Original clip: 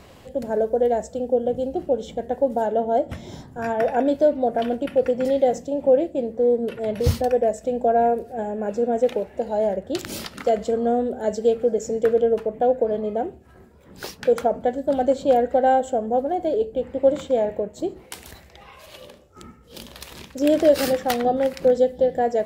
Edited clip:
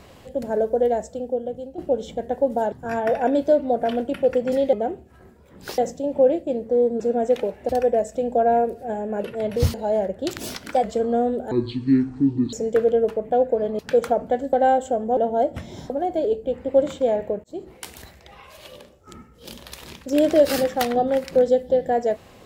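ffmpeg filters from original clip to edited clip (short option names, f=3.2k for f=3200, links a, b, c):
-filter_complex "[0:a]asplit=18[a][b][c][d][e][f][g][h][i][j][k][l][m][n][o][p][q][r];[a]atrim=end=1.78,asetpts=PTS-STARTPTS,afade=t=out:st=0.85:d=0.93:silence=0.237137[s];[b]atrim=start=1.78:end=2.722,asetpts=PTS-STARTPTS,afade=t=in:d=0.004:c=hsin:silence=0.237137[t];[c]atrim=start=3.448:end=5.462[u];[d]atrim=start=13.078:end=14.132[v];[e]atrim=start=5.458:end=6.682[w];[f]atrim=start=8.728:end=9.422[x];[g]atrim=start=7.178:end=8.732[y];[h]atrim=start=6.678:end=7.182[z];[i]atrim=start=9.418:end=10.074[aa];[j]atrim=start=10.07:end=10.56,asetpts=PTS-STARTPTS,asetrate=48951,aresample=44100[ab];[k]atrim=start=10.556:end=11.244[ac];[l]atrim=start=11.24:end=11.82,asetpts=PTS-STARTPTS,asetrate=25137,aresample=44100[ad];[m]atrim=start=11.816:end=13.082[ae];[n]atrim=start=14.128:end=14.872[af];[o]atrim=start=15.548:end=16.192[ag];[p]atrim=start=2.718:end=3.452[ah];[q]atrim=start=16.188:end=17.73,asetpts=PTS-STARTPTS,afade=t=out:st=1.538:d=0.004:c=hsin[ai];[r]atrim=start=17.73,asetpts=PTS-STARTPTS,afade=t=in:d=0.27[aj];[s][t]concat=n=2:v=0:a=1[ak];[ak][u]acrossfade=d=0.004:c1=hsin:c2=hsin[al];[al][v]acrossfade=d=0.004:c1=hsin:c2=hsin[am];[am][w]acrossfade=d=0.004:c1=hsin:c2=hsin[an];[an][x]acrossfade=d=0.004:c1=hsin:c2=hsin[ao];[ao][y]acrossfade=d=0.004:c1=hsin:c2=hsin[ap];[ap][z]acrossfade=d=0.004:c1=hsin:c2=hsin[aq];[aq][aa]acrossfade=d=0.004:c1=hsin:c2=hsin[ar];[ar][ab]acrossfade=d=0.004:c1=hsin:c2=hsin[as];[as][ac]acrossfade=d=0.004:c1=hsin:c2=hsin[at];[at][ad]acrossfade=d=0.004:c1=hsin:c2=hsin[au];[au][ae]acrossfade=d=0.004:c1=hsin:c2=hsin[av];[av][af]acrossfade=d=0.004:c1=hsin:c2=hsin[aw];[aw][ag]acrossfade=d=0.004:c1=hsin:c2=hsin[ax];[ax][ah]acrossfade=d=0.004:c1=hsin:c2=hsin[ay];[ai][aj]concat=n=2:v=0:a=1[az];[ay][az]acrossfade=d=0.004:c1=hsin:c2=hsin"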